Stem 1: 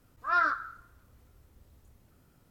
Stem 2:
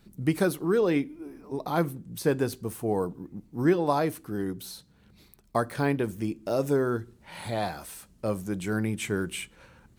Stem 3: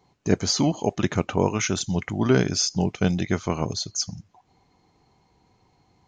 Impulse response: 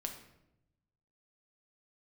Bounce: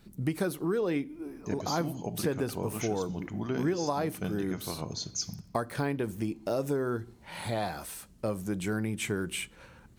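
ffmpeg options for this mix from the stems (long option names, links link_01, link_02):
-filter_complex "[1:a]volume=1dB[link_01];[2:a]adelay=1200,volume=-9dB,afade=type=in:start_time=4.8:duration=0.32:silence=0.473151,asplit=2[link_02][link_03];[link_03]volume=-3.5dB[link_04];[3:a]atrim=start_sample=2205[link_05];[link_04][link_05]afir=irnorm=-1:irlink=0[link_06];[link_01][link_02][link_06]amix=inputs=3:normalize=0,acompressor=threshold=-28dB:ratio=3"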